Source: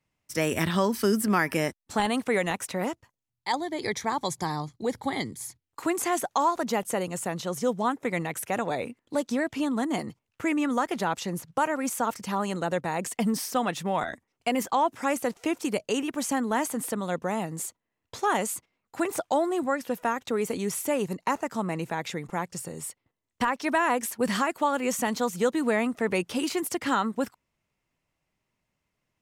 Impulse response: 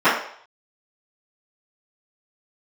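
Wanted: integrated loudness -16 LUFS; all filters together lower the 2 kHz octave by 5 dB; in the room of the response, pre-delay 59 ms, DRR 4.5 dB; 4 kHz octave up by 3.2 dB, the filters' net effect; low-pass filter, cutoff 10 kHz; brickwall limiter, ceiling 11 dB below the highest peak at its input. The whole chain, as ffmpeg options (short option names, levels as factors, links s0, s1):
-filter_complex "[0:a]lowpass=10000,equalizer=f=2000:t=o:g=-8,equalizer=f=4000:t=o:g=7,alimiter=limit=0.0794:level=0:latency=1,asplit=2[s0][s1];[1:a]atrim=start_sample=2205,adelay=59[s2];[s1][s2]afir=irnorm=-1:irlink=0,volume=0.0355[s3];[s0][s3]amix=inputs=2:normalize=0,volume=5.96"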